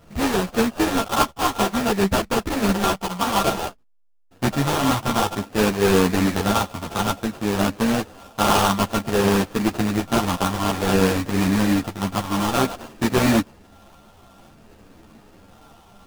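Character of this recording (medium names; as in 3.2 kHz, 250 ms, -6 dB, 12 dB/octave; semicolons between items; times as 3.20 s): a buzz of ramps at a fixed pitch in blocks of 32 samples; phasing stages 4, 0.55 Hz, lowest notch 440–1700 Hz; aliases and images of a low sample rate 2.1 kHz, jitter 20%; a shimmering, thickened sound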